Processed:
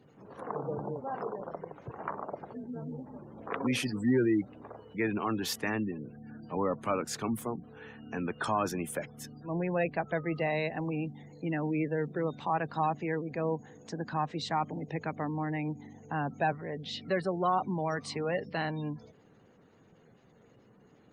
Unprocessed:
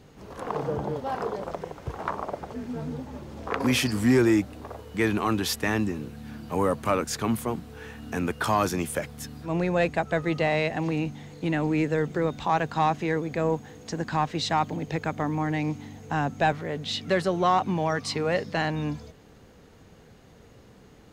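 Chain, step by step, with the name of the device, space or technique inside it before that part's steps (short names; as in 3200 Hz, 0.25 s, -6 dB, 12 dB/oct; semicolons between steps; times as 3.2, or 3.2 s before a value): noise-suppressed video call (HPF 110 Hz 24 dB/oct; spectral gate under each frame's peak -25 dB strong; gain -6 dB; Opus 32 kbps 48000 Hz)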